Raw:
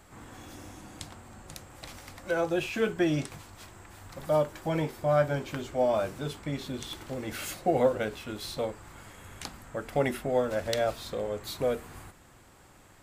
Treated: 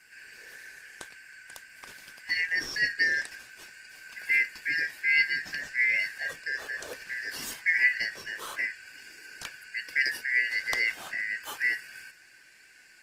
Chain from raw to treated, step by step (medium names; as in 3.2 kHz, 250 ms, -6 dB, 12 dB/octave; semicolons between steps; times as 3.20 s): four frequency bands reordered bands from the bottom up 3142; Opus 20 kbps 48 kHz